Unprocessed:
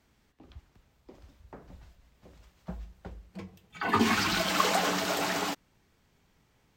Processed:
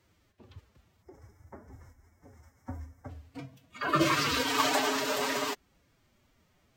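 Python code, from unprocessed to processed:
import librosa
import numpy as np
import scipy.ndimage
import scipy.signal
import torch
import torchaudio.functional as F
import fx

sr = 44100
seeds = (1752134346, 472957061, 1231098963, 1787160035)

y = fx.pitch_keep_formants(x, sr, semitones=6.5)
y = fx.spec_box(y, sr, start_s=1.03, length_s=2.06, low_hz=2300.0, high_hz=5000.0, gain_db=-18)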